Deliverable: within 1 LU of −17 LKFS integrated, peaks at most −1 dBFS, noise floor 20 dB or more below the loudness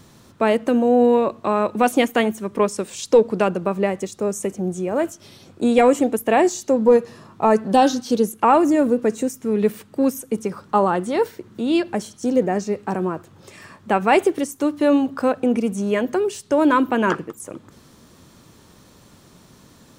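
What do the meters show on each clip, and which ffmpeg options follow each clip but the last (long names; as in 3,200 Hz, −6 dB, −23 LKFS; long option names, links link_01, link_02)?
integrated loudness −20.0 LKFS; sample peak −5.0 dBFS; target loudness −17.0 LKFS
→ -af "volume=3dB"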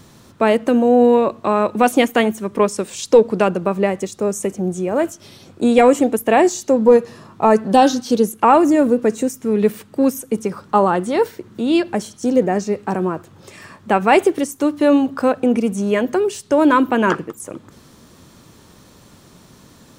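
integrated loudness −17.0 LKFS; sample peak −2.0 dBFS; background noise floor −47 dBFS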